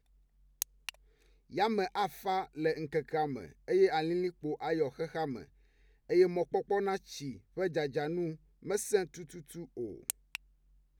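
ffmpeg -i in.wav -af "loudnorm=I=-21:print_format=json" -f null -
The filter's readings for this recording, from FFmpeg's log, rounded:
"input_i" : "-34.3",
"input_tp" : "-11.8",
"input_lra" : "5.1",
"input_thresh" : "-45.2",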